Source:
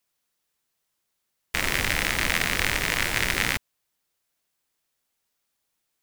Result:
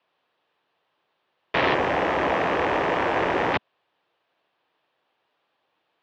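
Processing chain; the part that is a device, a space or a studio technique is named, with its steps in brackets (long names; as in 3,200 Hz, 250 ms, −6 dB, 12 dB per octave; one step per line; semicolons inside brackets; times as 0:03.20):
overdrive pedal into a guitar cabinet (mid-hump overdrive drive 21 dB, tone 1,100 Hz, clips at −4 dBFS; loudspeaker in its box 97–3,500 Hz, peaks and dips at 220 Hz −7 dB, 1,400 Hz −5 dB, 2,100 Hz −7 dB)
0:01.74–0:03.54: octave-band graphic EQ 125/2,000/4,000/8,000 Hz −7/−4/−12/+7 dB
level +5 dB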